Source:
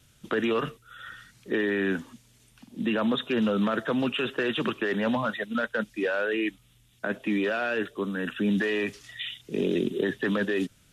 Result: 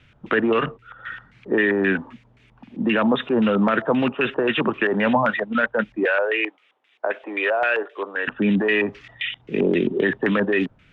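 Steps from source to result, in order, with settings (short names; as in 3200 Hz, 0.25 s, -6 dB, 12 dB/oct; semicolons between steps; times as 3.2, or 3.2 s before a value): 6.05–8.28 HPF 420 Hz 24 dB/oct; LFO low-pass square 3.8 Hz 880–2300 Hz; gain +5.5 dB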